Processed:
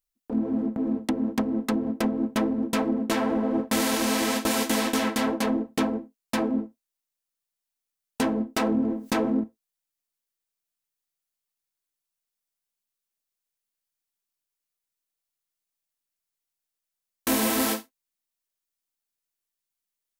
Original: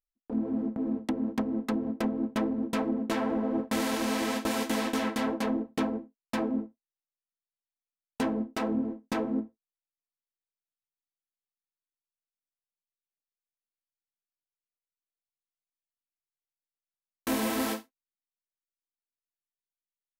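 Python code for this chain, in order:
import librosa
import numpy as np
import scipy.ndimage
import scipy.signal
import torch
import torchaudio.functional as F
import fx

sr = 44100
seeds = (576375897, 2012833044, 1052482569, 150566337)

y = fx.high_shelf(x, sr, hz=4400.0, db=7.0)
y = fx.env_flatten(y, sr, amount_pct=50, at=(8.56, 9.44))
y = F.gain(torch.from_numpy(y), 4.0).numpy()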